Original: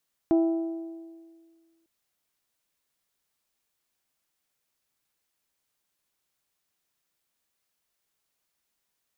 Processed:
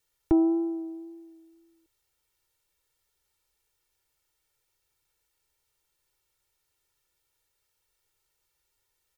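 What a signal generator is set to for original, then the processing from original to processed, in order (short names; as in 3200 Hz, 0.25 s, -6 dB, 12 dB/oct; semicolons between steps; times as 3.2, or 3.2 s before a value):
metal hit bell, lowest mode 330 Hz, modes 5, decay 1.79 s, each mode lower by 10 dB, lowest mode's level -17 dB
low shelf 94 Hz +11 dB; wow and flutter 20 cents; comb 2.2 ms, depth 85%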